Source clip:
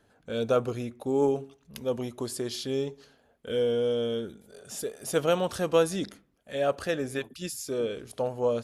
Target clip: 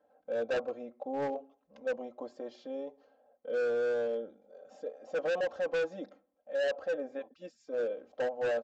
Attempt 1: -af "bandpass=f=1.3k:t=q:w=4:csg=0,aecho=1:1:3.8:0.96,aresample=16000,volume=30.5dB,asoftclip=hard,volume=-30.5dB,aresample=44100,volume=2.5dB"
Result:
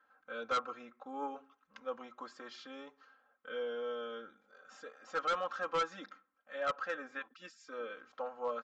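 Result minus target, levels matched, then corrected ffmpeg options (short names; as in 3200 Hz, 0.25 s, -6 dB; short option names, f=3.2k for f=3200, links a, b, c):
1000 Hz band +9.5 dB
-af "bandpass=f=630:t=q:w=4:csg=0,aecho=1:1:3.8:0.96,aresample=16000,volume=30.5dB,asoftclip=hard,volume=-30.5dB,aresample=44100,volume=2.5dB"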